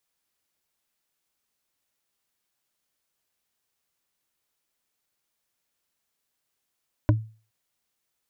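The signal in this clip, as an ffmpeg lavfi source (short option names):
-f lavfi -i "aevalsrc='0.224*pow(10,-3*t/0.37)*sin(2*PI*110*t)+0.15*pow(10,-3*t/0.11)*sin(2*PI*303.3*t)+0.1*pow(10,-3*t/0.049)*sin(2*PI*594.4*t)+0.0668*pow(10,-3*t/0.027)*sin(2*PI*982.6*t)+0.0447*pow(10,-3*t/0.017)*sin(2*PI*1467.4*t)':d=0.42:s=44100"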